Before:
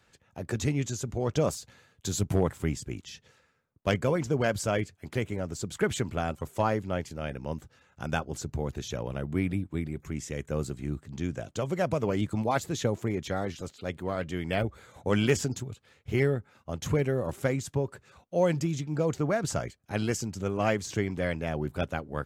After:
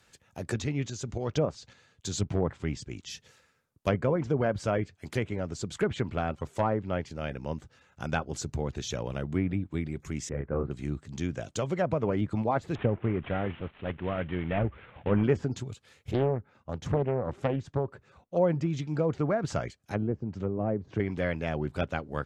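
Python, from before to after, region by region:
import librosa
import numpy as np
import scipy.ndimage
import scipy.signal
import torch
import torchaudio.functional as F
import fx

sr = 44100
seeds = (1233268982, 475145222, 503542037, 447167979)

y = fx.chain(x, sr, fx.lowpass(hz=6700.0, slope=12),
    fx.tremolo_shape(shape='saw_up', hz=3.6, depth_pct=45), at=(0.62, 3.1))
y = fx.chain(y, sr, fx.high_shelf(hz=5800.0, db=-9.0),
    fx.clip_hard(threshold_db=-18.0), at=(5.29, 8.15))
y = fx.chain(y, sr, fx.lowpass(hz=1600.0, slope=24),
    fx.doubler(ms=29.0, db=-3.5), at=(10.29, 10.71))
y = fx.chain(y, sr, fx.cvsd(bps=16000),
    fx.low_shelf(hz=170.0, db=4.5), at=(12.75, 15.24))
y = fx.chain(y, sr, fx.lowpass(hz=1200.0, slope=6),
    fx.doppler_dist(depth_ms=0.72), at=(16.11, 18.37))
y = fx.chain(y, sr, fx.highpass(hz=52.0, slope=12),
    fx.env_lowpass_down(base_hz=540.0, full_db=-26.5), at=(19.77, 21.0))
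y = fx.env_lowpass_down(y, sr, base_hz=1200.0, full_db=-22.0)
y = fx.high_shelf(y, sr, hz=3600.0, db=7.0)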